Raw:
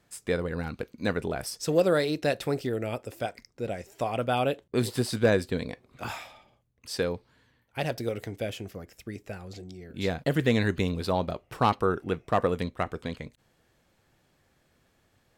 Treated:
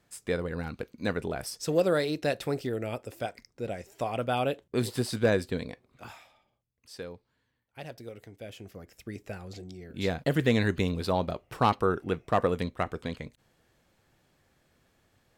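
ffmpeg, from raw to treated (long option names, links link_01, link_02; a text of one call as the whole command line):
ffmpeg -i in.wav -af "volume=9.5dB,afade=type=out:start_time=5.54:duration=0.6:silence=0.316228,afade=type=in:start_time=8.39:duration=0.81:silence=0.266073" out.wav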